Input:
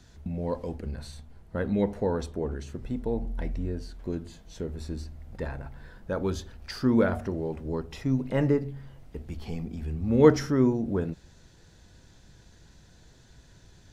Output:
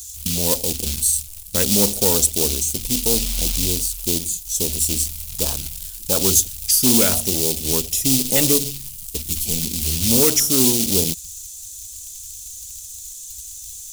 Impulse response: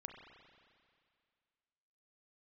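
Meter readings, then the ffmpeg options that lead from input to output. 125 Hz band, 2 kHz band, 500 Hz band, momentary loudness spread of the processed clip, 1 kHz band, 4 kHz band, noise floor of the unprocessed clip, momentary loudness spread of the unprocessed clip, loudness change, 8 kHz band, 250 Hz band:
+3.0 dB, +7.5 dB, +2.5 dB, 18 LU, +3.0 dB, +24.0 dB, -55 dBFS, 17 LU, +11.5 dB, +34.0 dB, +3.5 dB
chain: -af "equalizer=f=140:w=6.4:g=-5,afwtdn=0.0141,alimiter=limit=-14.5dB:level=0:latency=1:release=449,aexciter=amount=7.4:drive=6.2:freq=6.5k,acrusher=bits=5:mode=log:mix=0:aa=0.000001,highshelf=f=2.6k:g=7.5,asoftclip=type=tanh:threshold=-19dB,aexciter=amount=9.9:drive=4.1:freq=2.5k,volume=6.5dB"

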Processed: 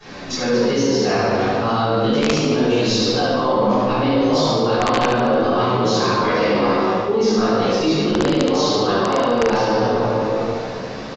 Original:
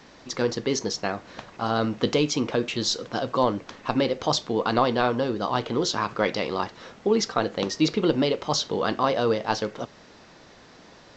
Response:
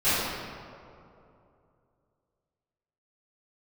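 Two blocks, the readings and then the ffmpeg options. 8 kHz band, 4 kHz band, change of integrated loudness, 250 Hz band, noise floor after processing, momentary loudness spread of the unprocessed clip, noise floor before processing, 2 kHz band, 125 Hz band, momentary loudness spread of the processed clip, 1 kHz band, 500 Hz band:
n/a, +5.5 dB, +7.5 dB, +8.5 dB, -29 dBFS, 8 LU, -51 dBFS, +7.5 dB, +9.0 dB, 2 LU, +8.0 dB, +8.5 dB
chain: -filter_complex "[1:a]atrim=start_sample=2205[a];[0:a][a]afir=irnorm=-1:irlink=0,flanger=delay=9.2:depth=9.7:regen=-3:speed=0.34:shape=triangular,aeval=exprs='(mod(0.794*val(0)+1,2)-1)/0.794':c=same,areverse,acompressor=threshold=-18dB:ratio=5,areverse,aecho=1:1:72|144|216|288|360|432:0.501|0.246|0.12|0.059|0.0289|0.0142,asplit=2[b][c];[c]alimiter=limit=-15dB:level=0:latency=1,volume=-0.5dB[d];[b][d]amix=inputs=2:normalize=0,aresample=16000,aresample=44100,volume=-2.5dB"

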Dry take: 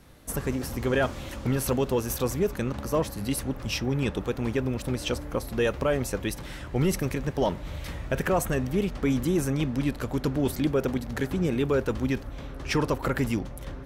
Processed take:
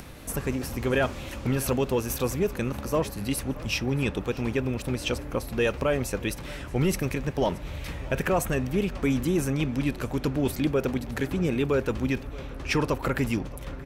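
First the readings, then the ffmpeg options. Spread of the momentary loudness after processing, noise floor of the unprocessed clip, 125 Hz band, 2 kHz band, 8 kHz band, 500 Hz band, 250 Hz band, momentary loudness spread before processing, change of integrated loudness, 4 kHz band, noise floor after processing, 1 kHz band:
6 LU, -40 dBFS, 0.0 dB, +2.0 dB, 0.0 dB, 0.0 dB, 0.0 dB, 6 LU, 0.0 dB, +1.0 dB, -39 dBFS, 0.0 dB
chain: -filter_complex "[0:a]equalizer=f=2.5k:w=4.7:g=5,acompressor=mode=upward:threshold=-34dB:ratio=2.5,asplit=2[a][b];[b]aecho=0:1:627:0.0891[c];[a][c]amix=inputs=2:normalize=0"

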